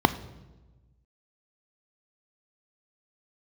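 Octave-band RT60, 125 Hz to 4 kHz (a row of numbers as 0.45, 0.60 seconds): 1.8, 1.5, 1.3, 1.1, 0.90, 0.85 seconds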